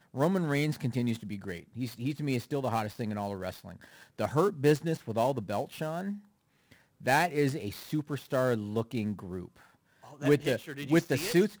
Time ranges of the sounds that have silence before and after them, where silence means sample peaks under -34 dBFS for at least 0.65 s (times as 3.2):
7.06–9.45